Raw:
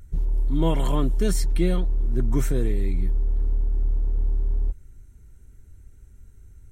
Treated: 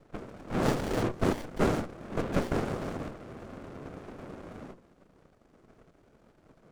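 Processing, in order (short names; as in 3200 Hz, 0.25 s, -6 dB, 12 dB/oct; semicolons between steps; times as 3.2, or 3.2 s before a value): noise vocoder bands 2; notches 60/120/180/240/300/360/420/480/540 Hz; running maximum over 33 samples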